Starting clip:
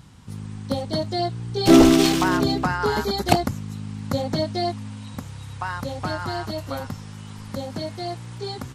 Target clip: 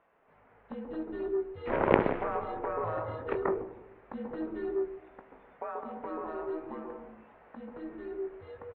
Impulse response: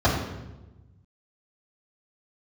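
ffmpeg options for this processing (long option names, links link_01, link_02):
-filter_complex "[0:a]asplit=2[link_01][link_02];[link_02]adelay=19,volume=-10.5dB[link_03];[link_01][link_03]amix=inputs=2:normalize=0,asplit=2[link_04][link_05];[1:a]atrim=start_sample=2205,highshelf=frequency=2100:gain=-11.5,adelay=131[link_06];[link_05][link_06]afir=irnorm=-1:irlink=0,volume=-20dB[link_07];[link_04][link_07]amix=inputs=2:normalize=0,aeval=exprs='1.5*(cos(1*acos(clip(val(0)/1.5,-1,1)))-cos(1*PI/2))+0.75*(cos(3*acos(clip(val(0)/1.5,-1,1)))-cos(3*PI/2))+0.0422*(cos(5*acos(clip(val(0)/1.5,-1,1)))-cos(5*PI/2))':channel_layout=same,highpass=frequency=560:width_type=q:width=0.5412,highpass=frequency=560:width_type=q:width=1.307,lowpass=frequency=2400:width_type=q:width=0.5176,lowpass=frequency=2400:width_type=q:width=0.7071,lowpass=frequency=2400:width_type=q:width=1.932,afreqshift=-310"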